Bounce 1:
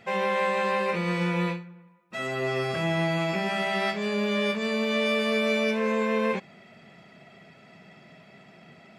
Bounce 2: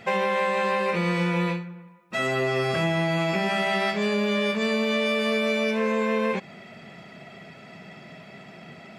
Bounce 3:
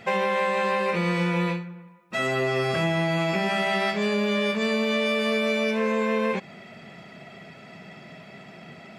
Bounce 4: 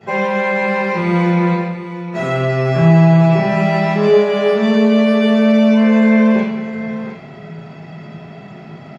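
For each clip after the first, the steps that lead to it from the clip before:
compression, threshold -28 dBFS, peak gain reduction 7 dB; trim +7 dB
no audible change
feedback comb 140 Hz, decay 1.1 s, harmonics odd, mix 70%; delay 710 ms -12 dB; reverberation RT60 0.70 s, pre-delay 3 ms, DRR -15.5 dB; trim -3.5 dB

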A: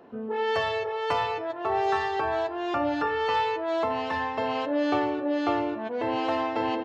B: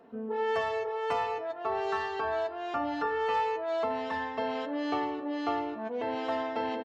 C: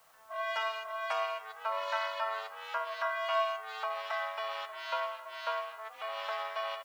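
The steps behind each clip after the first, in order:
comb 4.4 ms, depth 52%; trim -6 dB
rippled Chebyshev high-pass 780 Hz, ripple 3 dB; ring modulator 220 Hz; word length cut 12-bit, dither triangular; trim +5 dB

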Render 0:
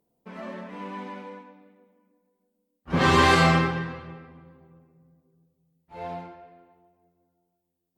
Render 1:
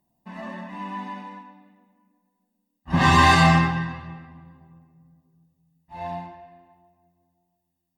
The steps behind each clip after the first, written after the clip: comb 1.1 ms, depth 91%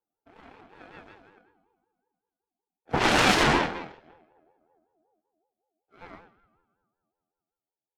Chebyshev shaper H 3 -8 dB, 4 -7 dB, 8 -22 dB, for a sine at -3.5 dBFS; peaking EQ 240 Hz +6 dB 1.1 oct; ring modulator with a swept carrier 580 Hz, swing 20%, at 5.3 Hz; trim -4 dB

